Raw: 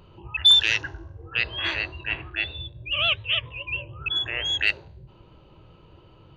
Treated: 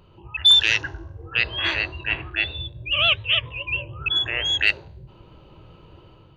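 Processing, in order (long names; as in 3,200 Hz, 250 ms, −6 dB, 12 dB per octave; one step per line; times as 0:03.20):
automatic gain control gain up to 6 dB
level −2 dB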